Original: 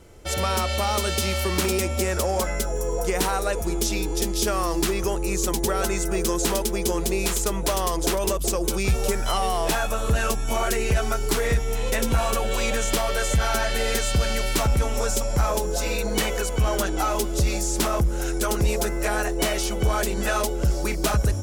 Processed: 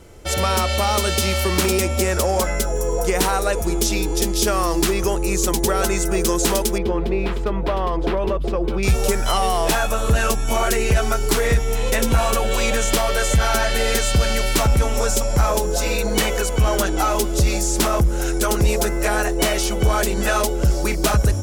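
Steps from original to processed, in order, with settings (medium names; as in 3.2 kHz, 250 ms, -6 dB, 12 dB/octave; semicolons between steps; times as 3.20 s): 6.78–8.83 s: distance through air 410 m; trim +4.5 dB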